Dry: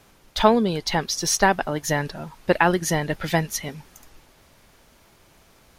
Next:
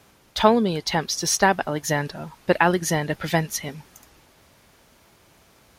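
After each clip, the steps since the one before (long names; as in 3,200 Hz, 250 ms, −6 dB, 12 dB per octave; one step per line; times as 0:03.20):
high-pass filter 52 Hz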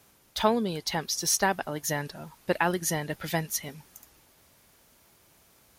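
high-shelf EQ 7,800 Hz +12 dB
level −7.5 dB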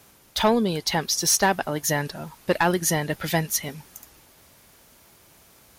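soft clipping −16.5 dBFS, distortion −16 dB
level +6.5 dB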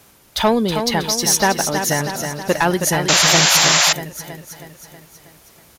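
repeating echo 320 ms, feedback 57%, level −7 dB
sound drawn into the spectrogram noise, 0:03.08–0:03.93, 530–7,600 Hz −18 dBFS
level +4 dB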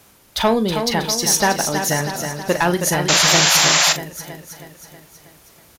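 double-tracking delay 40 ms −11.5 dB
level −1 dB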